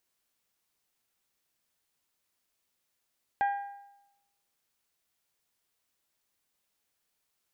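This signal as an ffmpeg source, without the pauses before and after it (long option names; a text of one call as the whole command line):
ffmpeg -f lavfi -i "aevalsrc='0.075*pow(10,-3*t/0.91)*sin(2*PI*804*t)+0.0266*pow(10,-3*t/0.739)*sin(2*PI*1608*t)+0.00944*pow(10,-3*t/0.7)*sin(2*PI*1929.6*t)+0.00335*pow(10,-3*t/0.654)*sin(2*PI*2412*t)+0.00119*pow(10,-3*t/0.6)*sin(2*PI*3216*t)':duration=1.55:sample_rate=44100" out.wav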